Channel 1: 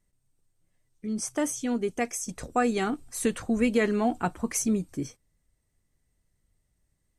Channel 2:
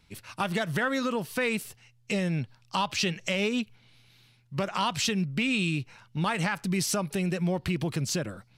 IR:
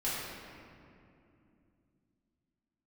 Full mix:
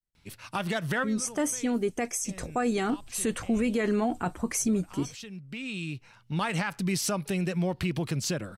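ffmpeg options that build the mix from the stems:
-filter_complex "[0:a]agate=range=-33dB:threshold=-59dB:ratio=3:detection=peak,volume=2dB,asplit=2[link_01][link_02];[1:a]adelay=150,volume=-0.5dB[link_03];[link_02]apad=whole_len=384578[link_04];[link_03][link_04]sidechaincompress=threshold=-40dB:ratio=12:attack=16:release=1150[link_05];[link_01][link_05]amix=inputs=2:normalize=0,alimiter=limit=-19dB:level=0:latency=1:release=30"

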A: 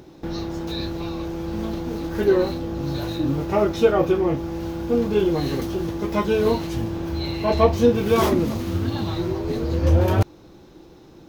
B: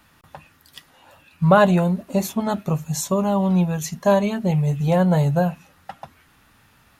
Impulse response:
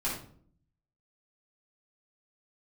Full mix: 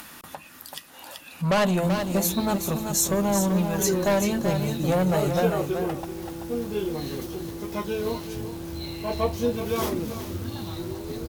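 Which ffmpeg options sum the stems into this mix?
-filter_complex "[0:a]acrusher=bits=8:dc=4:mix=0:aa=0.000001,adelay=1600,volume=-8.5dB,asplit=2[link_01][link_02];[link_02]volume=-12dB[link_03];[1:a]lowshelf=frequency=170:width_type=q:width=1.5:gain=-7.5,asoftclip=type=tanh:threshold=-16.5dB,volume=-1dB,asplit=2[link_04][link_05];[link_05]volume=-7dB[link_06];[link_03][link_06]amix=inputs=2:normalize=0,aecho=0:1:383:1[link_07];[link_01][link_04][link_07]amix=inputs=3:normalize=0,aemphasis=mode=production:type=cd,acompressor=mode=upward:threshold=-33dB:ratio=2.5"

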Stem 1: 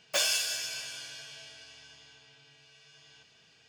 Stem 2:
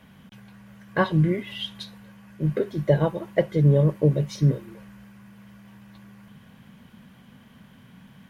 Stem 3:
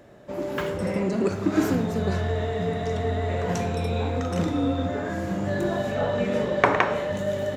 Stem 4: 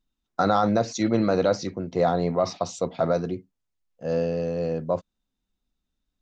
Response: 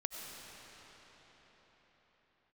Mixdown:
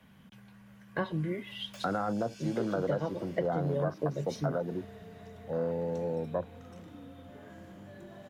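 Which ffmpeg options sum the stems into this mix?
-filter_complex "[0:a]acompressor=threshold=-38dB:ratio=10,adelay=1600,volume=-11dB[link_01];[1:a]volume=-7dB,asplit=2[link_02][link_03];[2:a]acompressor=threshold=-30dB:ratio=6,adelay=2400,volume=-16.5dB[link_04];[3:a]afwtdn=0.0398,equalizer=frequency=1500:width=6.3:gain=8.5,adelay=1450,volume=-5.5dB[link_05];[link_03]apad=whole_len=439441[link_06];[link_04][link_06]sidechaincompress=threshold=-34dB:ratio=8:attack=16:release=240[link_07];[link_01][link_02][link_07][link_05]amix=inputs=4:normalize=0,acrossover=split=150|510[link_08][link_09][link_10];[link_08]acompressor=threshold=-45dB:ratio=4[link_11];[link_09]acompressor=threshold=-32dB:ratio=4[link_12];[link_10]acompressor=threshold=-33dB:ratio=4[link_13];[link_11][link_12][link_13]amix=inputs=3:normalize=0"

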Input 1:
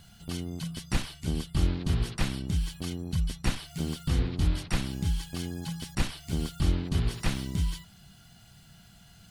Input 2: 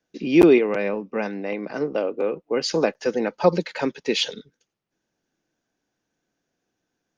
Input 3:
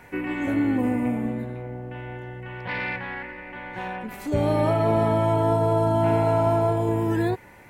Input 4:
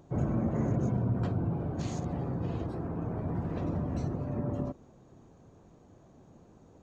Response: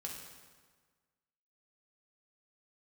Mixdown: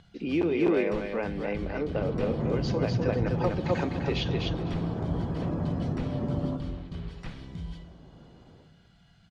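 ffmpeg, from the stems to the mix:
-filter_complex "[0:a]bandreject=frequency=2700:width=20,acompressor=mode=upward:threshold=-46dB:ratio=2.5,volume=-10dB,asplit=2[link_01][link_02];[link_02]volume=-4dB[link_03];[1:a]volume=-5.5dB,asplit=3[link_04][link_05][link_06];[link_05]volume=-13.5dB[link_07];[link_06]volume=-6dB[link_08];[3:a]dynaudnorm=framelen=350:gausssize=3:maxgain=4dB,adelay=1850,volume=-3dB,asplit=3[link_09][link_10][link_11];[link_10]volume=-7.5dB[link_12];[link_11]volume=-11dB[link_13];[link_04][link_09]amix=inputs=2:normalize=0,acompressor=threshold=-27dB:ratio=6,volume=0dB[link_14];[link_01]acompressor=threshold=-39dB:ratio=6,volume=0dB[link_15];[4:a]atrim=start_sample=2205[link_16];[link_03][link_07][link_12]amix=inputs=3:normalize=0[link_17];[link_17][link_16]afir=irnorm=-1:irlink=0[link_18];[link_08][link_13]amix=inputs=2:normalize=0,aecho=0:1:251|502|753:1|0.18|0.0324[link_19];[link_14][link_15][link_18][link_19]amix=inputs=4:normalize=0,lowpass=3700"

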